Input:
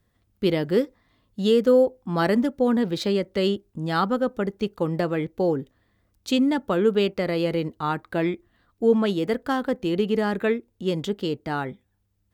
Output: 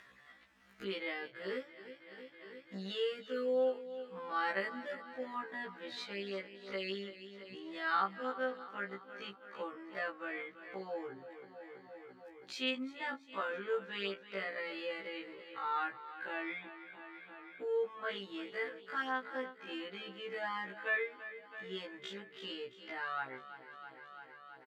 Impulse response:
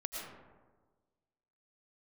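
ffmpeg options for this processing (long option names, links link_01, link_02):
-filter_complex "[0:a]bandpass=frequency=1800:width_type=q:width=1.5:csg=0,asplit=2[link_01][link_02];[link_02]aecho=0:1:165|330|495|660|825|990:0.2|0.118|0.0695|0.041|0.0242|0.0143[link_03];[link_01][link_03]amix=inputs=2:normalize=0,acompressor=mode=upward:threshold=-35dB:ratio=2.5,atempo=0.5,afftfilt=real='re*1.73*eq(mod(b,3),0)':imag='im*1.73*eq(mod(b,3),0)':win_size=2048:overlap=0.75,volume=-2.5dB"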